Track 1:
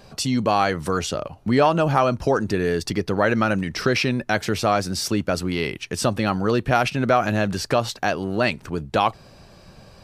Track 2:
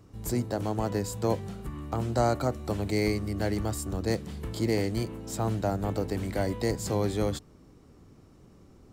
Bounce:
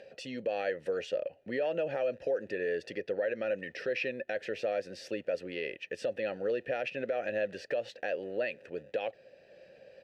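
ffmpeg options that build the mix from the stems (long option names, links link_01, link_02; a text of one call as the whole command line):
ffmpeg -i stem1.wav -i stem2.wav -filter_complex "[0:a]volume=2dB,asplit=2[link_01][link_02];[1:a]alimiter=limit=-20dB:level=0:latency=1:release=135,acrusher=samples=41:mix=1:aa=0.000001,adelay=1600,volume=-19dB[link_03];[link_02]apad=whole_len=464316[link_04];[link_03][link_04]sidechaingate=range=-33dB:threshold=-36dB:ratio=16:detection=peak[link_05];[link_01][link_05]amix=inputs=2:normalize=0,acompressor=mode=upward:threshold=-36dB:ratio=2.5,asplit=3[link_06][link_07][link_08];[link_06]bandpass=frequency=530:width_type=q:width=8,volume=0dB[link_09];[link_07]bandpass=frequency=1840:width_type=q:width=8,volume=-6dB[link_10];[link_08]bandpass=frequency=2480:width_type=q:width=8,volume=-9dB[link_11];[link_09][link_10][link_11]amix=inputs=3:normalize=0,alimiter=limit=-23.5dB:level=0:latency=1:release=105" out.wav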